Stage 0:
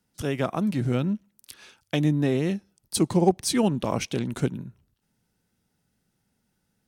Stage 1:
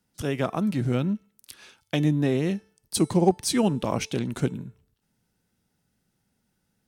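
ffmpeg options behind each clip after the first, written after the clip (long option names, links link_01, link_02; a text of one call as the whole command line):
ffmpeg -i in.wav -af "bandreject=frequency=440:width_type=h:width=4,bandreject=frequency=880:width_type=h:width=4,bandreject=frequency=1320:width_type=h:width=4,bandreject=frequency=1760:width_type=h:width=4,bandreject=frequency=2200:width_type=h:width=4,bandreject=frequency=2640:width_type=h:width=4,bandreject=frequency=3080:width_type=h:width=4,bandreject=frequency=3520:width_type=h:width=4,bandreject=frequency=3960:width_type=h:width=4,bandreject=frequency=4400:width_type=h:width=4,bandreject=frequency=4840:width_type=h:width=4,bandreject=frequency=5280:width_type=h:width=4,bandreject=frequency=5720:width_type=h:width=4,bandreject=frequency=6160:width_type=h:width=4,bandreject=frequency=6600:width_type=h:width=4,bandreject=frequency=7040:width_type=h:width=4,bandreject=frequency=7480:width_type=h:width=4,bandreject=frequency=7920:width_type=h:width=4,bandreject=frequency=8360:width_type=h:width=4,bandreject=frequency=8800:width_type=h:width=4,bandreject=frequency=9240:width_type=h:width=4,bandreject=frequency=9680:width_type=h:width=4,bandreject=frequency=10120:width_type=h:width=4,bandreject=frequency=10560:width_type=h:width=4,bandreject=frequency=11000:width_type=h:width=4,bandreject=frequency=11440:width_type=h:width=4" out.wav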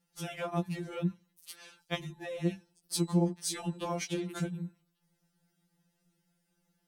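ffmpeg -i in.wav -af "acompressor=threshold=-26dB:ratio=10,afftfilt=real='re*2.83*eq(mod(b,8),0)':imag='im*2.83*eq(mod(b,8),0)':win_size=2048:overlap=0.75" out.wav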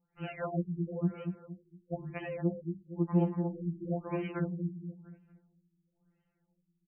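ffmpeg -i in.wav -filter_complex "[0:a]asplit=2[link_01][link_02];[link_02]aecho=0:1:232|464|696|928:0.501|0.175|0.0614|0.0215[link_03];[link_01][link_03]amix=inputs=2:normalize=0,afftfilt=real='re*lt(b*sr/1024,360*pow(3200/360,0.5+0.5*sin(2*PI*1*pts/sr)))':imag='im*lt(b*sr/1024,360*pow(3200/360,0.5+0.5*sin(2*PI*1*pts/sr)))':win_size=1024:overlap=0.75" out.wav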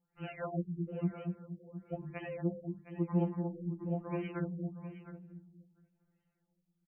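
ffmpeg -i in.wav -af "aecho=1:1:712:0.224,volume=-3dB" out.wav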